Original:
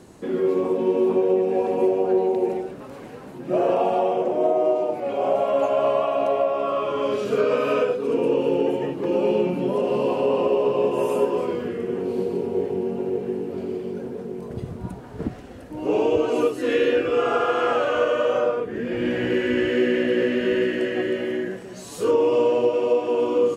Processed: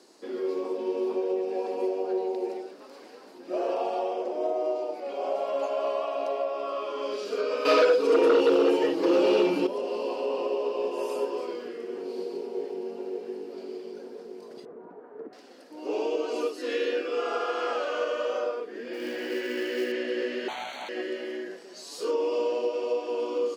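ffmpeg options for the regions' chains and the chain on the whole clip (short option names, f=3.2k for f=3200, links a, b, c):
-filter_complex "[0:a]asettb=1/sr,asplit=3[a][b][c];[a]atrim=end=7.654[d];[b]atrim=start=7.65:end=9.67,asetpts=PTS-STARTPTS,afade=t=in:d=0.004:c=qsin,afade=t=out:st=2.016:d=0.004:c=qsin,aecho=1:1:6.3:0.71,atrim=end_sample=89082,aeval=exprs='0.447*sin(PI/2*2*val(0)/0.447)':c=same[e];[c]atrim=start=9.666[f];[d][e]acrossfade=d=0.004:c1=hsin:c2=qsin[g];[g][f]acrossfade=d=0.004:c1=qsin:c2=hsin,asettb=1/sr,asplit=3[h][i][j];[h]atrim=end=14.654[k];[i]atrim=start=14.65:end=15.33,asetpts=PTS-STARTPTS,afade=t=in:d=0.004:c=qsin,afade=t=out:st=0.676:d=0.004:c=qsin,lowpass=f=1.7k:w=0.5412,lowpass=f=1.7k:w=1.3066,equalizer=f=450:w=4.8:g=9,acompressor=threshold=-26dB:ratio=4:attack=3.2:release=140:knee=1:detection=peak[l];[j]atrim=start=15.326[m];[k][l]acrossfade=d=0.004:c1=hsin:c2=qsin[n];[n][m]acrossfade=d=0.004:c1=qsin:c2=hsin,asettb=1/sr,asplit=3[o][p][q];[o]atrim=end=18.934[r];[p]atrim=start=18.93:end=19.92,asetpts=PTS-STARTPTS,afade=t=in:d=0.004:c=qsin,afade=t=out:st=0.986:d=0.004:c=qsin,highpass=72,acrusher=bits=7:mode=log:mix=0:aa=0.000001[s];[q]atrim=start=19.916[t];[r][s]acrossfade=d=0.004:c1=hsin:c2=qsin[u];[u][t]acrossfade=d=0.004:c1=qsin:c2=hsin,asettb=1/sr,asplit=3[v][w][x];[v]atrim=end=20.484[y];[w]atrim=start=20.48:end=20.89,asetpts=PTS-STARTPTS,afade=t=in:d=0.004:c=qsin,afade=t=out:st=0.406:d=0.004:c=qsin,equalizer=f=71:t=o:w=1.5:g=-13.5,aeval=exprs='abs(val(0))':c=same,asuperstop=centerf=5100:order=12:qfactor=3.4[z];[x]atrim=start=20.886[aa];[y][z]acrossfade=d=0.004:c1=hsin:c2=qsin[ab];[ab][aa]acrossfade=d=0.004:c1=qsin:c2=hsin,highpass=f=290:w=0.5412,highpass=f=290:w=1.3066,equalizer=f=4.8k:w=2.2:g=14,volume=-8dB"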